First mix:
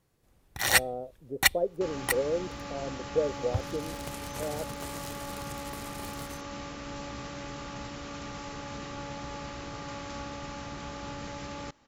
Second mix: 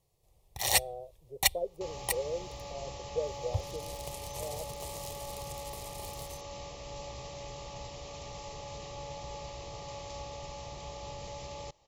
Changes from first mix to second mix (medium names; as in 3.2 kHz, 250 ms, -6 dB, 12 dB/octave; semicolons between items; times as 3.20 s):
speech -5.0 dB; master: add static phaser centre 620 Hz, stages 4